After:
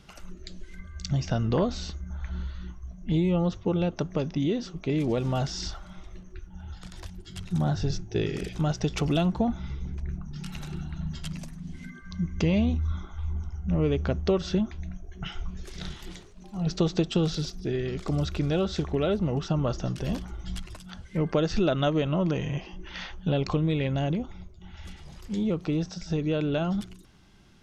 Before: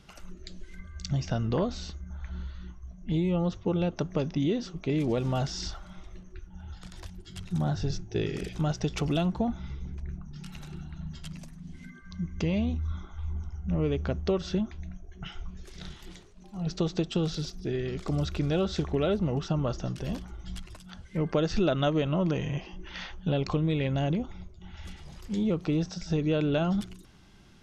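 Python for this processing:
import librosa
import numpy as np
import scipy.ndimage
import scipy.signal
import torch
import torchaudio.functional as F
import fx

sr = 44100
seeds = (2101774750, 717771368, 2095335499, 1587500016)

y = fx.rider(x, sr, range_db=4, speed_s=2.0)
y = y * librosa.db_to_amplitude(1.5)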